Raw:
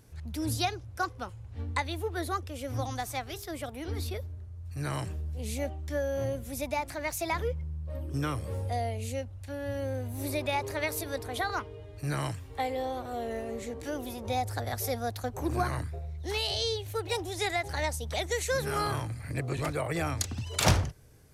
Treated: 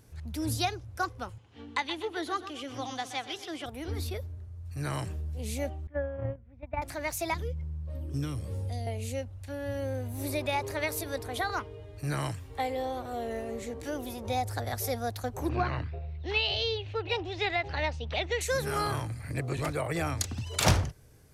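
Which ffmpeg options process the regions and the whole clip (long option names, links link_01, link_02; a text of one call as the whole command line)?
ffmpeg -i in.wav -filter_complex "[0:a]asettb=1/sr,asplit=3[link_01][link_02][link_03];[link_01]atrim=end=1.384[link_04];[link_02]atrim=start=1.38:end=3.66,asetpts=PTS-STARTPTS,afade=type=in:duration=0.004:curve=qsin,afade=type=out:start_time=2.276:duration=0.004:curve=qsin,highpass=240,equalizer=frequency=300:width_type=q:width=4:gain=3,equalizer=frequency=580:width_type=q:width=4:gain=-6,equalizer=frequency=3100:width_type=q:width=4:gain=9,equalizer=frequency=8400:width_type=q:width=4:gain=-8,lowpass=frequency=9200:width=0.5412,lowpass=frequency=9200:width=1.3066,aecho=1:1:125|250|375|500:0.251|0.111|0.0486|0.0214,atrim=end_sample=100548[link_05];[link_03]atrim=start=3.656[link_06];[link_04][link_05]acrossfade=duration=0.004:curve1=hsin:curve2=qsin[link_07];[link_07][link_06]acrossfade=duration=0.004:curve1=qsin:curve2=hsin,asettb=1/sr,asplit=3[link_08][link_09][link_10];[link_08]atrim=end=5.874[link_11];[link_09]atrim=start=5.87:end=6.82,asetpts=PTS-STARTPTS,afade=type=in:duration=0.004:curve=qsin,afade=type=out:start_time=0.946:duration=0.004:curve=qsin,lowpass=frequency=2200:width=0.5412,lowpass=frequency=2200:width=1.3066,agate=range=-19dB:threshold=-31dB:ratio=16:release=100:detection=peak,asubboost=boost=8:cutoff=200[link_12];[link_10]atrim=start=6.816[link_13];[link_11][link_12]acrossfade=duration=0.004:curve1=hsin:curve2=qsin[link_14];[link_14][link_13]acrossfade=duration=0.004:curve1=qsin:curve2=hsin,asettb=1/sr,asplit=3[link_15][link_16][link_17];[link_15]atrim=end=7.344[link_18];[link_16]atrim=start=7.34:end=8.87,asetpts=PTS-STARTPTS,afade=type=in:duration=0.004:curve=qsin,afade=type=out:start_time=1.526:duration=0.004:curve=qsin,highshelf=frequency=9400:gain=-5.5,acrossover=split=370|3000[link_19][link_20][link_21];[link_20]acompressor=threshold=-53dB:ratio=2.5:attack=3.2:release=140:knee=2.83:detection=peak[link_22];[link_19][link_22][link_21]amix=inputs=3:normalize=0[link_23];[link_17]atrim=start=8.866[link_24];[link_18][link_23]acrossfade=duration=0.004:curve1=hsin:curve2=qsin[link_25];[link_25][link_24]acrossfade=duration=0.004:curve1=qsin:curve2=hsin,asettb=1/sr,asplit=3[link_26][link_27][link_28];[link_26]atrim=end=15.494[link_29];[link_27]atrim=start=15.49:end=18.41,asetpts=PTS-STARTPTS,afade=type=in:duration=0.004:curve=qsin,afade=type=out:start_time=2.916:duration=0.004:curve=qsin,lowpass=frequency=4300:width=0.5412,lowpass=frequency=4300:width=1.3066,equalizer=frequency=2700:width_type=o:width=0.31:gain=9.5[link_30];[link_28]atrim=start=18.406[link_31];[link_29][link_30]acrossfade=duration=0.004:curve1=hsin:curve2=qsin[link_32];[link_32][link_31]acrossfade=duration=0.004:curve1=qsin:curve2=hsin" out.wav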